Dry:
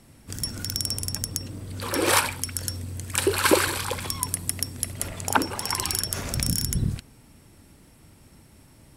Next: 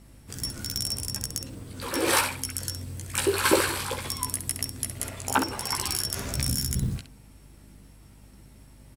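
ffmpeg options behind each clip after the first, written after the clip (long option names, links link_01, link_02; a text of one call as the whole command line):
ffmpeg -i in.wav -af "aecho=1:1:15|66:0.668|0.376,aeval=exprs='val(0)+0.00447*(sin(2*PI*50*n/s)+sin(2*PI*2*50*n/s)/2+sin(2*PI*3*50*n/s)/3+sin(2*PI*4*50*n/s)/4+sin(2*PI*5*50*n/s)/5)':channel_layout=same,acrusher=bits=7:mode=log:mix=0:aa=0.000001,volume=-4dB" out.wav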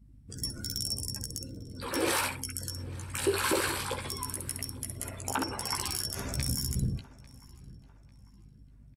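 ffmpeg -i in.wav -filter_complex "[0:a]afftdn=noise_reduction=22:noise_floor=-44,alimiter=limit=-15dB:level=0:latency=1:release=62,asplit=2[link_01][link_02];[link_02]adelay=847,lowpass=frequency=5000:poles=1,volume=-21dB,asplit=2[link_03][link_04];[link_04]adelay=847,lowpass=frequency=5000:poles=1,volume=0.39,asplit=2[link_05][link_06];[link_06]adelay=847,lowpass=frequency=5000:poles=1,volume=0.39[link_07];[link_01][link_03][link_05][link_07]amix=inputs=4:normalize=0,volume=-2.5dB" out.wav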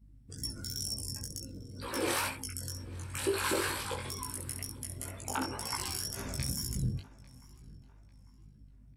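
ffmpeg -i in.wav -af "flanger=delay=18:depth=5.5:speed=2.1" out.wav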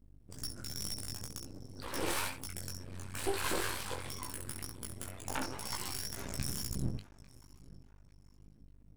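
ffmpeg -i in.wav -af "aeval=exprs='max(val(0),0)':channel_layout=same,volume=1dB" out.wav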